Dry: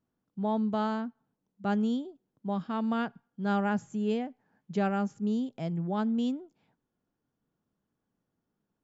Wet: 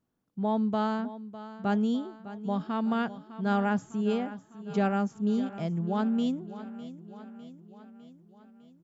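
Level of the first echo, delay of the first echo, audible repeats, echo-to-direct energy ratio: -14.5 dB, 604 ms, 5, -12.5 dB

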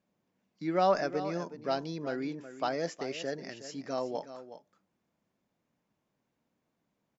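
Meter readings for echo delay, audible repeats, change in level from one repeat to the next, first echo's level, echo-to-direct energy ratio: 369 ms, 1, no regular repeats, -12.5 dB, -12.5 dB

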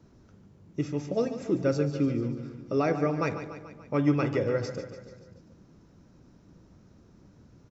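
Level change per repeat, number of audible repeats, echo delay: -4.5 dB, 5, 145 ms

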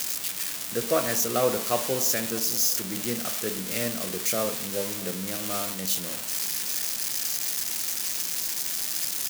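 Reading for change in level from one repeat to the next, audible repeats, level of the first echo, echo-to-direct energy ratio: -7.5 dB, 2, -20.0 dB, -19.0 dB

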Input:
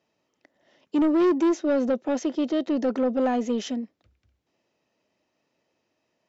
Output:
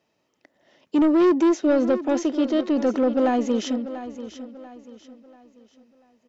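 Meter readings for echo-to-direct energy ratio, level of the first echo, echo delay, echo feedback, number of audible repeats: -12.5 dB, -13.0 dB, 689 ms, 37%, 3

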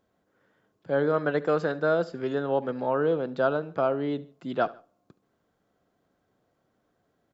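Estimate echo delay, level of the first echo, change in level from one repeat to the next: 72 ms, -20.5 dB, -7.0 dB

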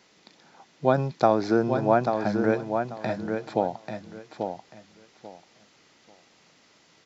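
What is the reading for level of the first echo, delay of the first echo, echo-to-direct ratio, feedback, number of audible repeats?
-6.0 dB, 839 ms, -6.0 dB, 21%, 3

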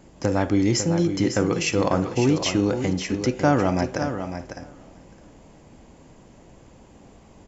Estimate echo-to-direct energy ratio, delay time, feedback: -8.5 dB, 551 ms, no regular repeats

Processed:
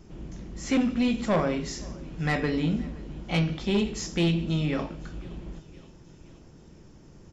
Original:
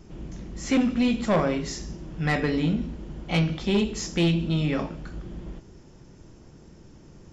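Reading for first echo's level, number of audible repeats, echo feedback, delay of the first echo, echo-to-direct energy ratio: -23.0 dB, 3, 60%, 520 ms, -21.0 dB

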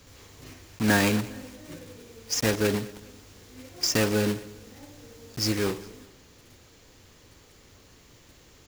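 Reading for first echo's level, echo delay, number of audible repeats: -21.0 dB, 204 ms, 2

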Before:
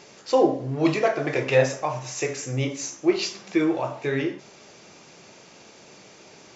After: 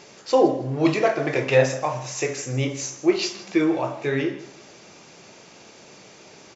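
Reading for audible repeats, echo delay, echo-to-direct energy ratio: 2, 160 ms, -16.5 dB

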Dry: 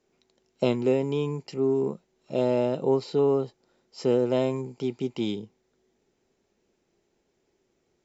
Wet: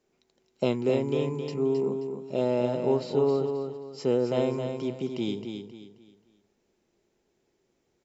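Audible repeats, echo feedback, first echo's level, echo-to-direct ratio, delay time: 3, 33%, -6.5 dB, -6.0 dB, 266 ms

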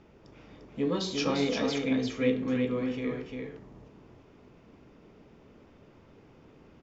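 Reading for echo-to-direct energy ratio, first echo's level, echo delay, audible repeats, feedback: -4.5 dB, -4.5 dB, 348 ms, 1, no regular repeats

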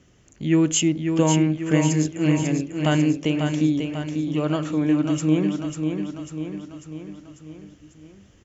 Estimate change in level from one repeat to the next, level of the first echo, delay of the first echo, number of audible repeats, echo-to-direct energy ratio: -5.0 dB, -6.0 dB, 545 ms, 5, -4.5 dB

